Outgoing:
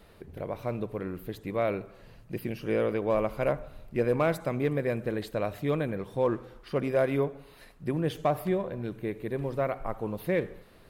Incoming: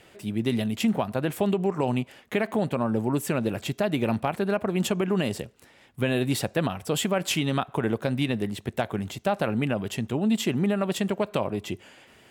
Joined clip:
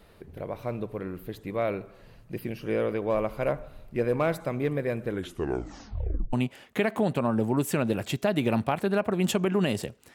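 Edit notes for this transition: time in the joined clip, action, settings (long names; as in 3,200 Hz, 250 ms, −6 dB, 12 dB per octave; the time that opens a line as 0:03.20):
outgoing
0:05.05: tape stop 1.28 s
0:06.33: continue with incoming from 0:01.89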